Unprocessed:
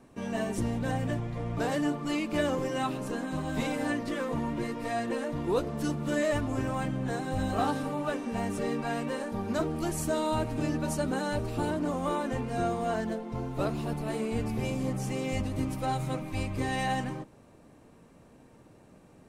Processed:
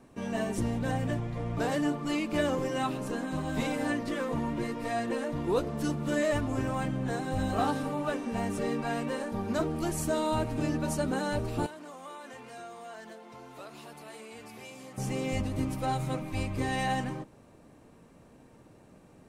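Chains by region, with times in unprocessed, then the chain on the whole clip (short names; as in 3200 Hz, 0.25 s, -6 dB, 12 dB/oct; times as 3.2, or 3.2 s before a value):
11.66–14.98 HPF 1200 Hz 6 dB/oct + compressor 2.5:1, threshold -44 dBFS
whole clip: dry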